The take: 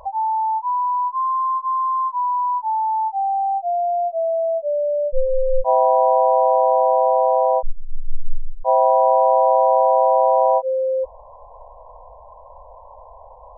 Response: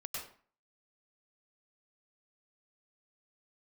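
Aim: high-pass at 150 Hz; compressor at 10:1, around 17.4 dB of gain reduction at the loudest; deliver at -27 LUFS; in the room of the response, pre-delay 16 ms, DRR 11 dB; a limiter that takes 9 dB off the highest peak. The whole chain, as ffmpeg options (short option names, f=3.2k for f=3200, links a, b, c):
-filter_complex "[0:a]highpass=150,acompressor=threshold=-30dB:ratio=10,alimiter=level_in=4.5dB:limit=-24dB:level=0:latency=1,volume=-4.5dB,asplit=2[a][b];[1:a]atrim=start_sample=2205,adelay=16[c];[b][c]afir=irnorm=-1:irlink=0,volume=-11dB[d];[a][d]amix=inputs=2:normalize=0,volume=7.5dB"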